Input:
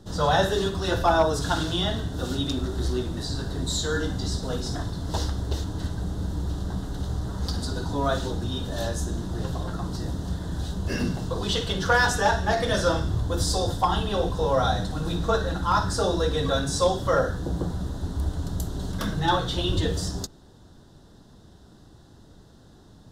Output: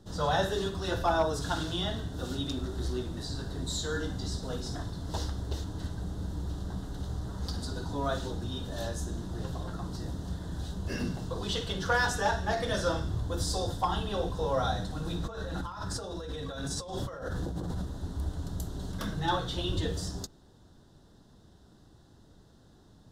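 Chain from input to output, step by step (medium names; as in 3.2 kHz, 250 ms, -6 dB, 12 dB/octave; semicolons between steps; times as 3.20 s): 15.22–17.87 s: compressor with a negative ratio -30 dBFS, ratio -1; trim -6.5 dB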